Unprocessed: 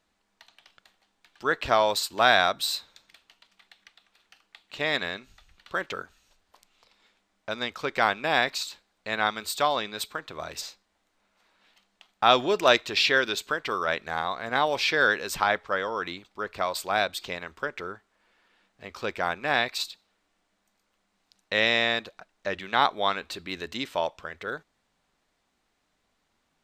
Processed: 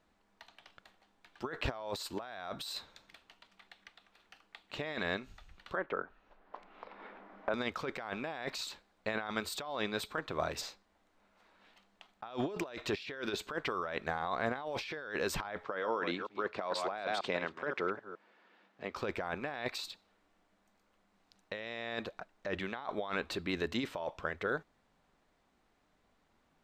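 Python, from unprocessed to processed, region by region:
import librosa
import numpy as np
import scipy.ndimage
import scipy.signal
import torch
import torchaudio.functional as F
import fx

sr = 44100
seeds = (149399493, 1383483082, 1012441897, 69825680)

y = fx.chain(x, sr, fx.lowpass(hz=1700.0, slope=12),
    fx.peak_eq(hz=90.0, db=-13.0, octaves=1.8),
    fx.band_squash(depth_pct=70), at=(5.75, 7.54))
y = fx.chain(y, sr, fx.reverse_delay(ms=157, wet_db=-12),
    fx.bandpass_edges(low_hz=180.0, high_hz=6000.0), at=(15.64, 18.96))
y = fx.over_compress(y, sr, threshold_db=-33.0, ratio=-1.0)
y = fx.high_shelf(y, sr, hz=2300.0, db=-10.5)
y = y * librosa.db_to_amplitude(-2.5)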